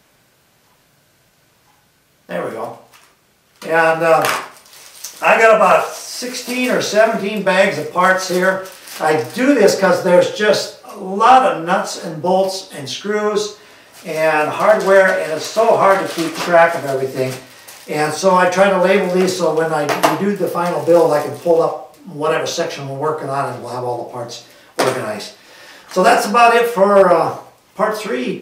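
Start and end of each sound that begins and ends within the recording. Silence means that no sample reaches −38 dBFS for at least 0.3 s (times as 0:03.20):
0:02.29–0:03.04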